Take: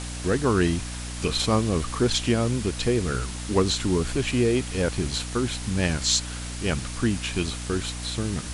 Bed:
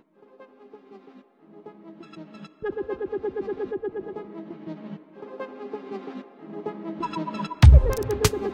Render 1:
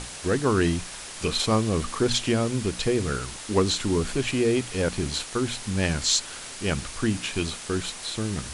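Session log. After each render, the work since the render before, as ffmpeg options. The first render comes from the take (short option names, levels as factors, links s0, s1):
-af "bandreject=f=60:t=h:w=6,bandreject=f=120:t=h:w=6,bandreject=f=180:t=h:w=6,bandreject=f=240:t=h:w=6,bandreject=f=300:t=h:w=6"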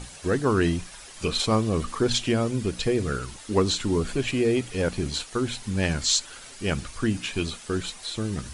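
-af "afftdn=nr=9:nf=-39"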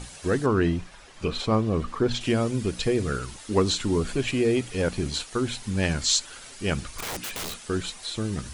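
-filter_complex "[0:a]asettb=1/sr,asplit=3[s0][s1][s2];[s0]atrim=end=0.464[s3];[s1]atrim=start=0.46:end=2.21,asetpts=PTS-STARTPTS,afade=t=in:d=0.004:c=qsin,afade=t=out:st=1.746:d=0.004:c=qsin,aemphasis=mode=reproduction:type=75kf[s4];[s2]atrim=start=2.206[s5];[s3][s4]acrossfade=d=0.004:c1=hsin:c2=qsin[s6];[s6][s5]acrossfade=d=0.004:c1=qsin:c2=hsin,asettb=1/sr,asplit=3[s7][s8][s9];[s7]atrim=end=6.894[s10];[s8]atrim=start=6.89:end=7.66,asetpts=PTS-STARTPTS,afade=t=in:d=0.004:c=qsin,afade=t=out:st=0.766:d=0.004:c=qsin,aeval=exprs='(mod(23.7*val(0)+1,2)-1)/23.7':c=same[s11];[s9]atrim=start=7.656[s12];[s10][s11]acrossfade=d=0.004:c1=hsin:c2=qsin[s13];[s13][s12]acrossfade=d=0.004:c1=qsin:c2=hsin"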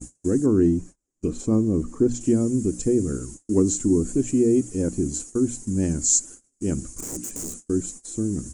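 -af "agate=range=0.0224:threshold=0.0112:ratio=16:detection=peak,firequalizer=gain_entry='entry(140,0);entry(300,10);entry(420,-1);entry(700,-11);entry(1100,-14);entry(3700,-23);entry(6900,10);entry(11000,-2)':delay=0.05:min_phase=1"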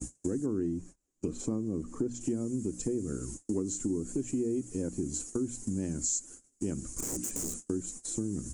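-filter_complex "[0:a]acrossover=split=110|1900[s0][s1][s2];[s0]alimiter=level_in=3.55:limit=0.0631:level=0:latency=1,volume=0.282[s3];[s3][s1][s2]amix=inputs=3:normalize=0,acompressor=threshold=0.0282:ratio=4"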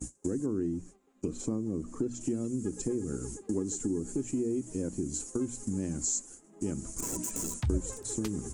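-filter_complex "[1:a]volume=0.106[s0];[0:a][s0]amix=inputs=2:normalize=0"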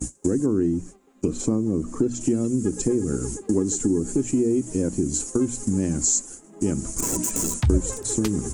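-af "volume=3.16"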